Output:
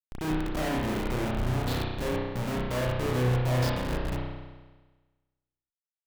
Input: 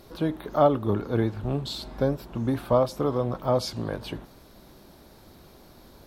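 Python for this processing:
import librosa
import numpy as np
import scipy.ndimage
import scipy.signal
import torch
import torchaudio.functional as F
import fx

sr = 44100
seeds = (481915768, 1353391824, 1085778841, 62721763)

y = fx.schmitt(x, sr, flips_db=-30.5)
y = fx.rev_spring(y, sr, rt60_s=1.3, pass_ms=(32,), chirp_ms=30, drr_db=-3.5)
y = y * librosa.db_to_amplitude(-4.5)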